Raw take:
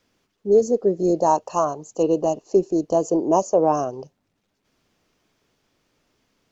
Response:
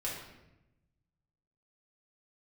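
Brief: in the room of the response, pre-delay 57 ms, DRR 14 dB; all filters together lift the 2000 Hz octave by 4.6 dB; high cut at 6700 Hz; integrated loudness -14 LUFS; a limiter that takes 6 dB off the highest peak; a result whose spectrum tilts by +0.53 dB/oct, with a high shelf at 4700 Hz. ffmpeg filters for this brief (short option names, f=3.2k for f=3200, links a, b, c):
-filter_complex "[0:a]lowpass=6.7k,equalizer=f=2k:t=o:g=8.5,highshelf=f=4.7k:g=-8,alimiter=limit=-11.5dB:level=0:latency=1,asplit=2[a][b];[1:a]atrim=start_sample=2205,adelay=57[c];[b][c]afir=irnorm=-1:irlink=0,volume=-17dB[d];[a][d]amix=inputs=2:normalize=0,volume=8.5dB"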